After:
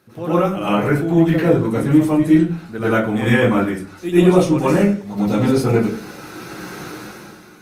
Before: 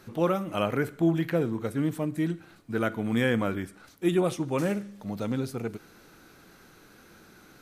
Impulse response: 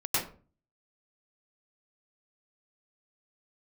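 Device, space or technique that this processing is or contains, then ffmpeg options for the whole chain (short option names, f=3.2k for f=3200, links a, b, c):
far-field microphone of a smart speaker: -filter_complex "[1:a]atrim=start_sample=2205[a];[0:a][a]afir=irnorm=-1:irlink=0,highpass=92,dynaudnorm=f=150:g=9:m=16dB,volume=-1dB" -ar 48000 -c:a libopus -b:a 32k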